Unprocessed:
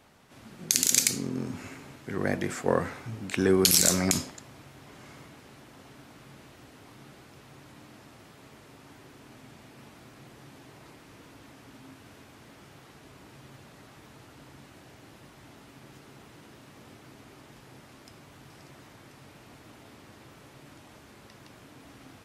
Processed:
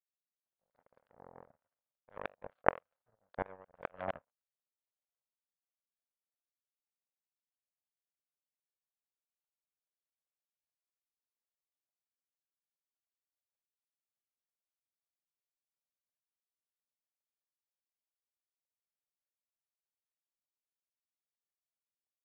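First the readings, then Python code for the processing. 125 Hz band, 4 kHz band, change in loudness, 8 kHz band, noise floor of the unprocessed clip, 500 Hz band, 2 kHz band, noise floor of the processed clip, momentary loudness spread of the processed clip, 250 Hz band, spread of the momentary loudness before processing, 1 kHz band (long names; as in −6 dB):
−21.5 dB, −34.5 dB, −14.5 dB, below −40 dB, −53 dBFS, −12.0 dB, −10.5 dB, below −85 dBFS, 23 LU, −23.0 dB, 20 LU, −3.5 dB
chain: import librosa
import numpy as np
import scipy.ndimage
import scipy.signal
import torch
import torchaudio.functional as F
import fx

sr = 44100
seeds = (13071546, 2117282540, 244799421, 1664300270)

y = scipy.signal.sosfilt(scipy.signal.butter(12, 1600.0, 'lowpass', fs=sr, output='sos'), x)
y = fx.power_curve(y, sr, exponent=3.0)
y = fx.low_shelf_res(y, sr, hz=430.0, db=-8.0, q=3.0)
y = fx.gate_flip(y, sr, shuts_db=-29.0, range_db=-28)
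y = y * 10.0 ** (11.0 / 20.0)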